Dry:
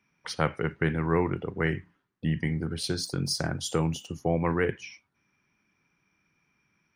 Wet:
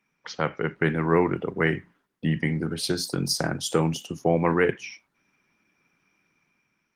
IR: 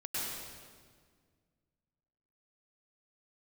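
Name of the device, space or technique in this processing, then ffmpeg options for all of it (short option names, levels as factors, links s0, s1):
video call: -af "highpass=160,dynaudnorm=f=140:g=9:m=1.88" -ar 48000 -c:a libopus -b:a 20k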